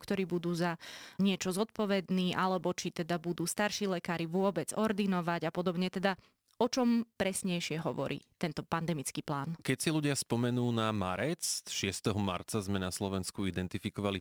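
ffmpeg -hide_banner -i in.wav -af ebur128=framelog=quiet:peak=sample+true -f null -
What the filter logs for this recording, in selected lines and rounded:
Integrated loudness:
  I:         -33.8 LUFS
  Threshold: -43.8 LUFS
Loudness range:
  LRA:         1.6 LU
  Threshold: -53.7 LUFS
  LRA low:   -34.6 LUFS
  LRA high:  -33.0 LUFS
Sample peak:
  Peak:      -15.2 dBFS
True peak:
  Peak:      -15.2 dBFS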